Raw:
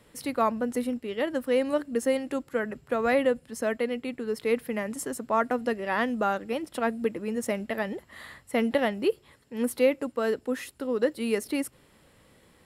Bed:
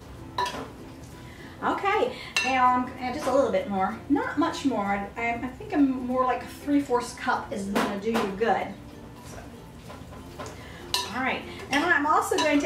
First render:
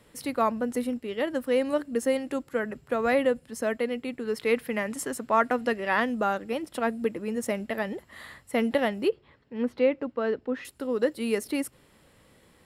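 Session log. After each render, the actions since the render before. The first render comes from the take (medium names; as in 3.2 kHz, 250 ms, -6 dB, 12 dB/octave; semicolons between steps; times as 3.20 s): 4.25–6.00 s: peaking EQ 2.2 kHz +4.5 dB 2.6 oct; 9.09–10.65 s: distance through air 230 m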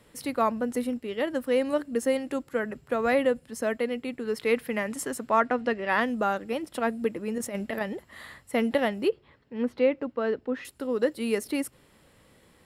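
5.40–5.89 s: distance through air 91 m; 7.38–7.81 s: compressor with a negative ratio -30 dBFS, ratio -0.5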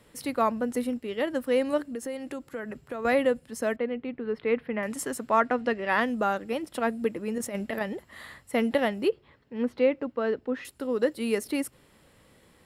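1.83–3.05 s: compression 3:1, threshold -33 dBFS; 3.76–4.83 s: distance through air 390 m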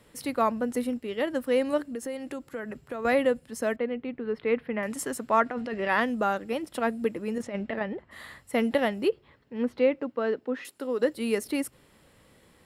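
5.46–5.88 s: compressor with a negative ratio -30 dBFS; 7.41–8.10 s: low-pass 4.3 kHz -> 2.1 kHz; 9.97–11.00 s: high-pass 120 Hz -> 280 Hz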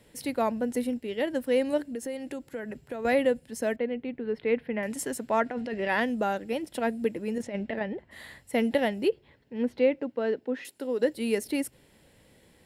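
peaking EQ 1.2 kHz -12 dB 0.37 oct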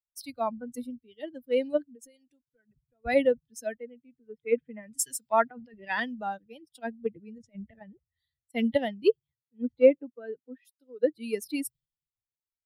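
expander on every frequency bin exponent 2; three bands expanded up and down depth 100%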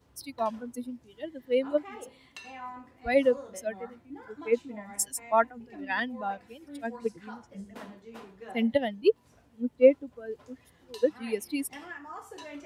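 add bed -20.5 dB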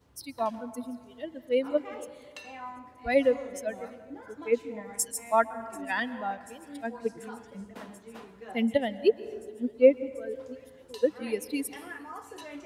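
feedback echo behind a high-pass 737 ms, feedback 80%, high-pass 3.6 kHz, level -22 dB; plate-style reverb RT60 2 s, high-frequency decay 0.4×, pre-delay 110 ms, DRR 14.5 dB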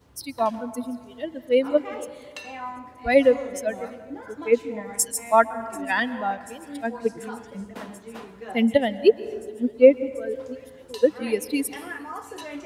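trim +6.5 dB; peak limiter -3 dBFS, peak gain reduction 2 dB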